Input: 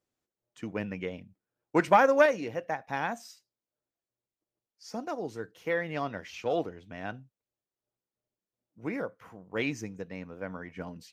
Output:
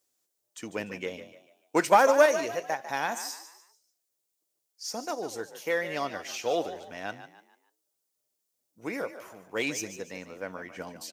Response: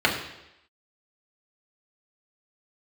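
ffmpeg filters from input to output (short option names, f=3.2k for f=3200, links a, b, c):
-filter_complex "[0:a]bass=f=250:g=-10,treble=f=4k:g=14,acrossover=split=1300[a][b];[b]asoftclip=type=tanh:threshold=-26.5dB[c];[a][c]amix=inputs=2:normalize=0,asplit=5[d][e][f][g][h];[e]adelay=147,afreqshift=47,volume=-12dB[i];[f]adelay=294,afreqshift=94,volume=-20.4dB[j];[g]adelay=441,afreqshift=141,volume=-28.8dB[k];[h]adelay=588,afreqshift=188,volume=-37.2dB[l];[d][i][j][k][l]amix=inputs=5:normalize=0,volume=2dB"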